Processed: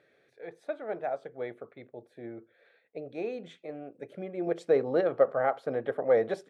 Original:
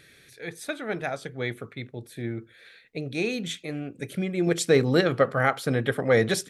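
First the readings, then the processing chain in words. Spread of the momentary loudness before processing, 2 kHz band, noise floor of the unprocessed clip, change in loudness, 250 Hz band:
17 LU, -13.0 dB, -56 dBFS, -4.0 dB, -10.0 dB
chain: band-pass 630 Hz, Q 2; gain +1 dB

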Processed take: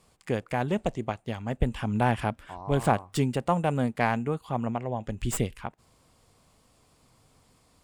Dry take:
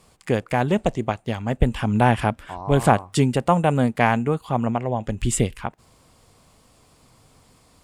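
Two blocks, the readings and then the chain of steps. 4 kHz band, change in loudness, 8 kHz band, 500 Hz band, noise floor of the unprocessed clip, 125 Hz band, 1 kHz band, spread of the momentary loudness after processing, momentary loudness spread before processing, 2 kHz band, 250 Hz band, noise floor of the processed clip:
-7.0 dB, -7.0 dB, -8.5 dB, -7.0 dB, -57 dBFS, -7.0 dB, -7.0 dB, 8 LU, 8 LU, -7.0 dB, -7.0 dB, -64 dBFS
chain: tracing distortion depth 0.037 ms; gain -7 dB

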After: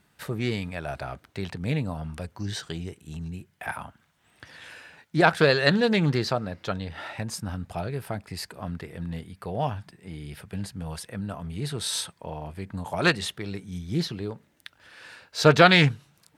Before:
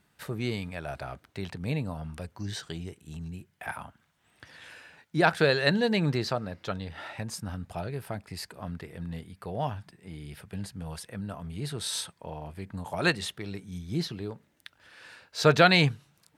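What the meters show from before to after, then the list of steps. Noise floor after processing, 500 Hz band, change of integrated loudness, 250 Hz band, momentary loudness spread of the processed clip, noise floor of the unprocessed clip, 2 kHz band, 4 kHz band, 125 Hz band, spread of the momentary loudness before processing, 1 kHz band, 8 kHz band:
-66 dBFS, +3.5 dB, +3.5 dB, +3.5 dB, 19 LU, -69 dBFS, +3.5 dB, +3.0 dB, +3.5 dB, 19 LU, +3.5 dB, +3.0 dB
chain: Doppler distortion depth 0.19 ms; gain +3.5 dB

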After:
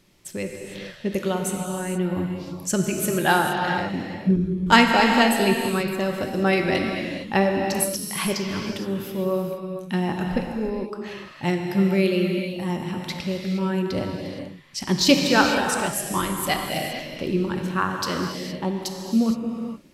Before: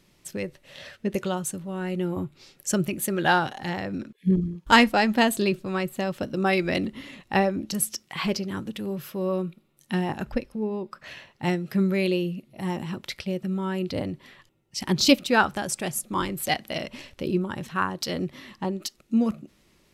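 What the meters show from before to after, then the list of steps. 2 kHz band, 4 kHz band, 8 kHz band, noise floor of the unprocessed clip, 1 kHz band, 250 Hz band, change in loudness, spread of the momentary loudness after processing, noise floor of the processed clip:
+3.0 dB, +3.0 dB, +3.0 dB, -63 dBFS, +3.0 dB, +3.0 dB, +3.0 dB, 13 LU, -40 dBFS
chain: non-linear reverb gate 0.49 s flat, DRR 2 dB; gain +1 dB

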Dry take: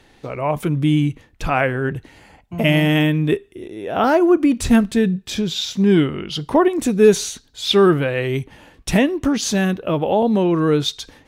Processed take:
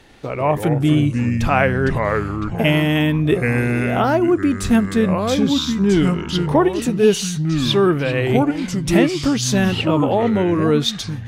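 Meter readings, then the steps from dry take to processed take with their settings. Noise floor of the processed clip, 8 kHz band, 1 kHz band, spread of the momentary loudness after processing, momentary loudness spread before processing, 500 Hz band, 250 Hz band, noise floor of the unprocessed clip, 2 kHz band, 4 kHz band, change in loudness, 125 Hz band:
-28 dBFS, +0.5 dB, +1.0 dB, 4 LU, 12 LU, 0.0 dB, +1.0 dB, -53 dBFS, +1.5 dB, +0.5 dB, +0.5 dB, +3.0 dB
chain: echoes that change speed 92 ms, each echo -4 st, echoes 3, each echo -6 dB; vocal rider within 4 dB 0.5 s

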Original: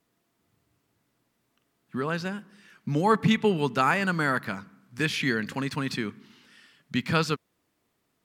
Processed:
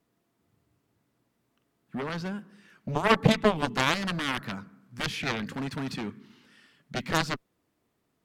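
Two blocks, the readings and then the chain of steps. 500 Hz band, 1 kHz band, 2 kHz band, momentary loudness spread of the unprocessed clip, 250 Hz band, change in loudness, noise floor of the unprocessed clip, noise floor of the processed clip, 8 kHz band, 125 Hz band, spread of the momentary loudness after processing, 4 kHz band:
-1.5 dB, -2.0 dB, -2.5 dB, 14 LU, -3.0 dB, -2.0 dB, -75 dBFS, -76 dBFS, +1.5 dB, -2.0 dB, 16 LU, +1.5 dB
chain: tilt shelf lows +3 dB, about 1100 Hz; added harmonics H 7 -11 dB, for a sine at -6.5 dBFS; gain -1.5 dB

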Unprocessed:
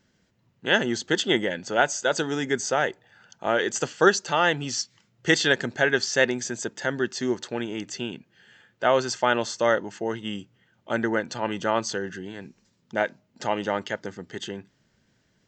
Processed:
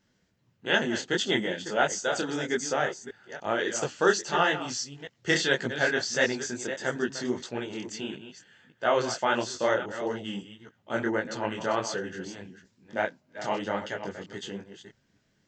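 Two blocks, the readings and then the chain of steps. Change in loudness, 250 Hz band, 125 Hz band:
-3.5 dB, -3.5 dB, -3.5 dB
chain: reverse delay 0.281 s, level -11 dB; detuned doubles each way 55 cents

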